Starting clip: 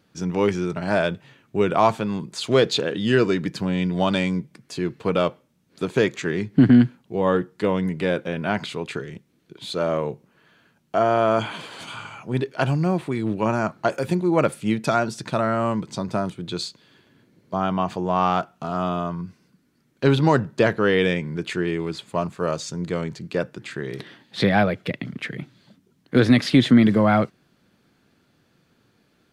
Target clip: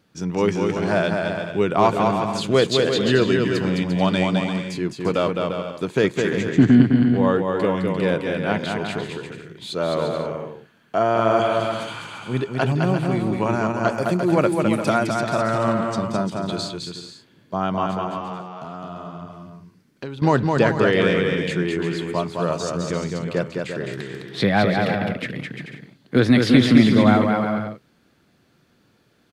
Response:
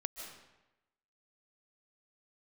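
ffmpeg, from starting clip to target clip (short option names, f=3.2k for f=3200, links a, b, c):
-filter_complex "[0:a]asettb=1/sr,asplit=3[a][b][c];[a]atrim=end=17.864[d];[b]atrim=start=17.86:end=20.22,asetpts=PTS-STARTPTS,afade=t=in:d=0.004:c=qsin,afade=t=out:st=2.356:d=0.004:c=qsin,acompressor=threshold=-33dB:ratio=4[e];[c]atrim=start=20.216[f];[d][e]acrossfade=d=0.004:c1=hsin:c2=qsin[g];[g][f]acrossfade=d=0.004:c1=qsin:c2=hsin,aecho=1:1:210|346.5|435.2|492.9|530.4:0.631|0.398|0.251|0.158|0.1"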